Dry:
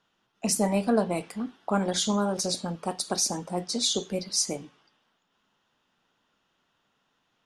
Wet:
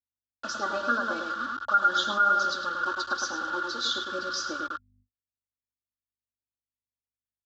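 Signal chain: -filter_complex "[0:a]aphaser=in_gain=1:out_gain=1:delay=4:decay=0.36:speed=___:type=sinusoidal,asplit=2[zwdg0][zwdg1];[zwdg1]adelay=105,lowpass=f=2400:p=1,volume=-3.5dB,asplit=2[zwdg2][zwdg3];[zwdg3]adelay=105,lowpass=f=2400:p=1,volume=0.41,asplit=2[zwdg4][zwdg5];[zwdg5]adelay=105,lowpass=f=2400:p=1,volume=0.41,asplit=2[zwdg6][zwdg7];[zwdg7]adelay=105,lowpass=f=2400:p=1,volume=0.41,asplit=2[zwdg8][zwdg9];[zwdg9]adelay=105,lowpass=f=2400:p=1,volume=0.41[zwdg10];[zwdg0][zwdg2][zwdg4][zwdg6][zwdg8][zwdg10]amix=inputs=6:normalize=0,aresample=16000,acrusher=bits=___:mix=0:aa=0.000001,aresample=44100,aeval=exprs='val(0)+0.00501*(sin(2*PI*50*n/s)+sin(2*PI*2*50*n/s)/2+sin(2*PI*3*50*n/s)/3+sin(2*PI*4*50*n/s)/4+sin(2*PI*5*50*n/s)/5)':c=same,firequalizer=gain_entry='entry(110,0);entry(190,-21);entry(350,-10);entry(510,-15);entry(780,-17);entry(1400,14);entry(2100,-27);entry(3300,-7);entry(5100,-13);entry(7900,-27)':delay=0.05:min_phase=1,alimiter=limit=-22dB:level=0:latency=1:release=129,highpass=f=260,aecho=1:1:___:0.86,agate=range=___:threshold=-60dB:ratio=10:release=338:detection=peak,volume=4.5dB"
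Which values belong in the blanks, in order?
0.46, 5, 3.5, -42dB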